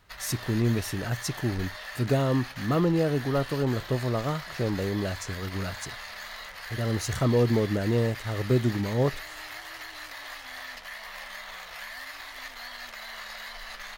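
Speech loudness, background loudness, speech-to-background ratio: -28.0 LUFS, -39.0 LUFS, 11.0 dB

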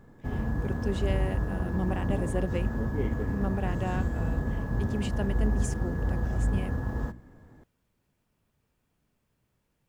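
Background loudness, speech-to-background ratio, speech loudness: -31.0 LUFS, -5.0 dB, -36.0 LUFS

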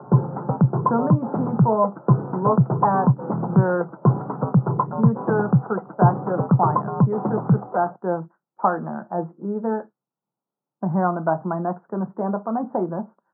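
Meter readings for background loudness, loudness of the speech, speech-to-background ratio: -22.0 LUFS, -25.5 LUFS, -3.5 dB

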